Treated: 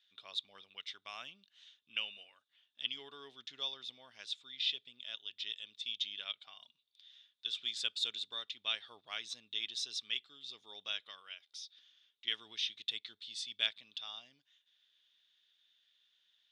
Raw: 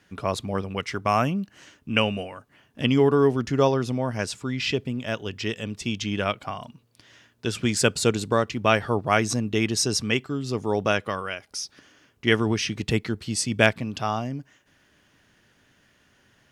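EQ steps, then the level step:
resonant band-pass 3,600 Hz, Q 14
+5.5 dB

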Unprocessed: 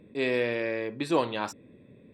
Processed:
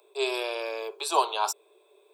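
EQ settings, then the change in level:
Butterworth high-pass 390 Hz 96 dB per octave
high-shelf EQ 5,900 Hz +10.5 dB
phaser with its sweep stopped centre 510 Hz, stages 6
+7.5 dB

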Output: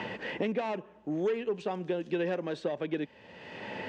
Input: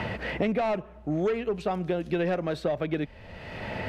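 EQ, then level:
loudspeaker in its box 200–7,100 Hz, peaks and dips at 670 Hz −9 dB, 1,300 Hz −9 dB, 2,200 Hz −6 dB, 4,100 Hz −5 dB
low-shelf EQ 280 Hz −5 dB
parametric band 5,300 Hz −3.5 dB 0.47 octaves
0.0 dB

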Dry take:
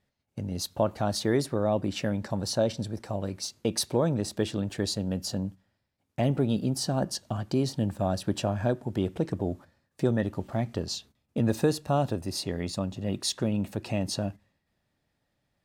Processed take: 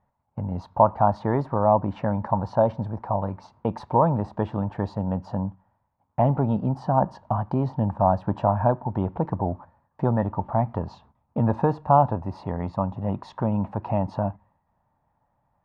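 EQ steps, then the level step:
low-pass with resonance 940 Hz, resonance Q 4.9
parametric band 370 Hz −9.5 dB 1.2 octaves
+6.0 dB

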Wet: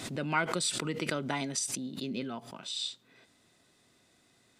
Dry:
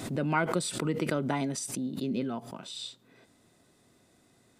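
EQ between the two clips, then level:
dynamic equaliser 6,900 Hz, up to +4 dB, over −50 dBFS, Q 0.77
parametric band 3,300 Hz +8.5 dB 2.9 octaves
−5.5 dB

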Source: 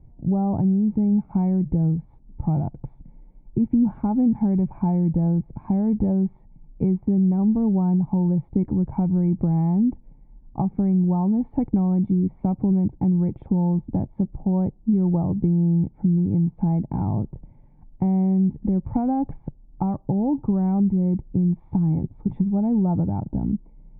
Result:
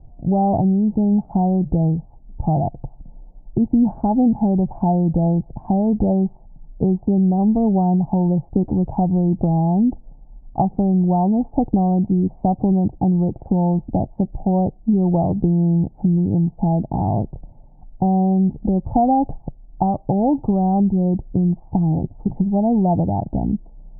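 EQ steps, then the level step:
low-shelf EQ 72 Hz +8 dB
dynamic equaliser 420 Hz, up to +3 dB, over −31 dBFS, Q 0.81
low-pass with resonance 720 Hz, resonance Q 4.9
0.0 dB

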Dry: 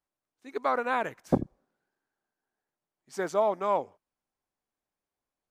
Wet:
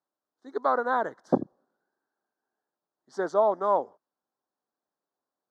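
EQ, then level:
band-pass filter 230–3,900 Hz
Butterworth band-reject 2,500 Hz, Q 1.1
+3.0 dB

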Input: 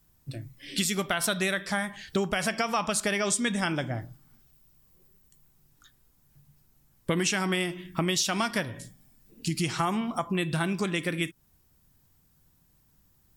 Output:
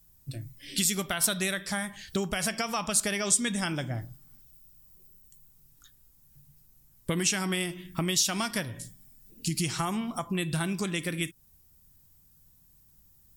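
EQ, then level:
low-shelf EQ 160 Hz +8.5 dB
high-shelf EQ 4,600 Hz +12 dB
−5.0 dB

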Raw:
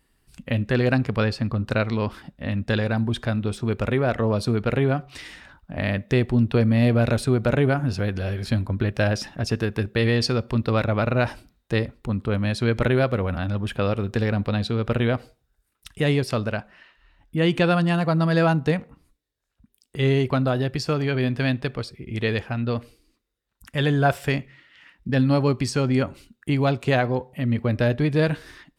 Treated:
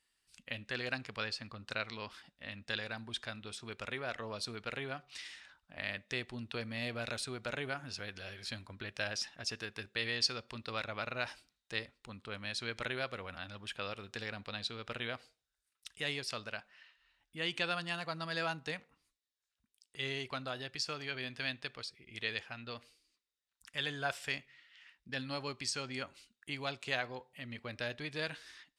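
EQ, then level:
high-frequency loss of the air 91 metres
first-order pre-emphasis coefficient 0.97
+3.0 dB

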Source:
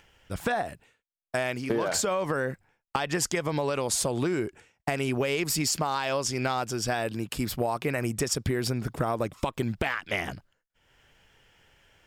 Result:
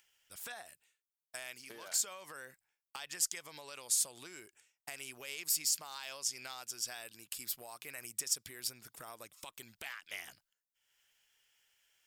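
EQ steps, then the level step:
first-order pre-emphasis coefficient 0.97
−3.0 dB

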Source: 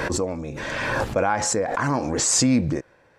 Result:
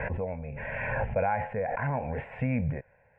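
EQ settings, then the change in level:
elliptic low-pass filter 2,500 Hz, stop band 60 dB
low-shelf EQ 200 Hz +5.5 dB
phaser with its sweep stopped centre 1,200 Hz, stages 6
−4.0 dB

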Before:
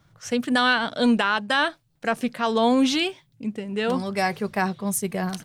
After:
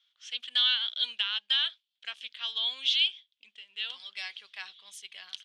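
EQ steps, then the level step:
four-pole ladder band-pass 3,500 Hz, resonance 75%
high-shelf EQ 4,800 Hz −11 dB
+8.5 dB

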